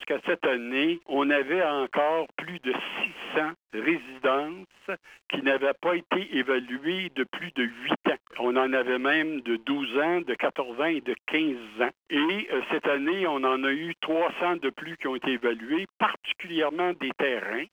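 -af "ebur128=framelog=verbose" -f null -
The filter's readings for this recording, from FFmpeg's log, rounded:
Integrated loudness:
  I:         -27.4 LUFS
  Threshold: -37.5 LUFS
Loudness range:
  LRA:         2.0 LU
  Threshold: -47.6 LUFS
  LRA low:   -28.6 LUFS
  LRA high:  -26.6 LUFS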